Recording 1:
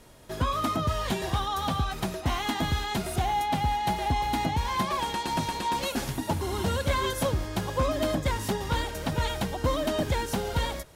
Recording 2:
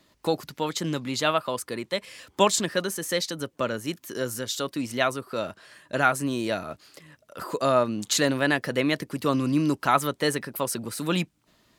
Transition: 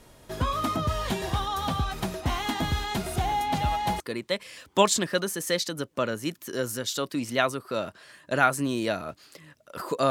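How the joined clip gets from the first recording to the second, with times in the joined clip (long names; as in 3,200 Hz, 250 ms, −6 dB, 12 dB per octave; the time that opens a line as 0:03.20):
recording 1
0:03.23: mix in recording 2 from 0:00.85 0.77 s −15 dB
0:04.00: continue with recording 2 from 0:01.62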